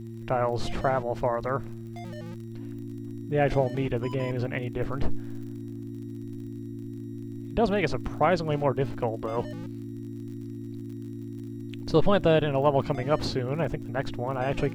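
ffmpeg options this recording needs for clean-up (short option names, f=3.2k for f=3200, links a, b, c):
-af "adeclick=t=4,bandreject=f=114:t=h:w=4,bandreject=f=228:t=h:w=4,bandreject=f=342:t=h:w=4,bandreject=f=280:w=30"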